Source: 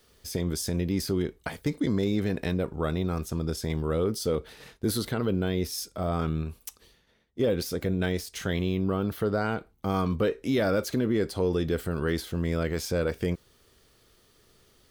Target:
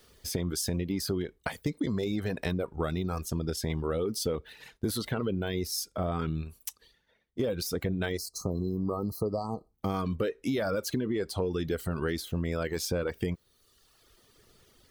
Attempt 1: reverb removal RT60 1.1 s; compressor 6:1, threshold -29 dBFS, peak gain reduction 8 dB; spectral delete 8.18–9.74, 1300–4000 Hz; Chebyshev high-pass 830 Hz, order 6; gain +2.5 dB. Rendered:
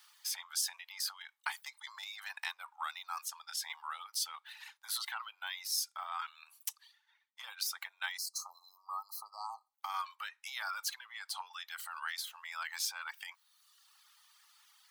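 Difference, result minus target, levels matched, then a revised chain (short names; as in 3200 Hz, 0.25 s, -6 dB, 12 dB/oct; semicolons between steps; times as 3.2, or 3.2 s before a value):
1000 Hz band +5.5 dB
reverb removal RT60 1.1 s; compressor 6:1, threshold -29 dBFS, peak gain reduction 8 dB; spectral delete 8.18–9.74, 1300–4000 Hz; gain +2.5 dB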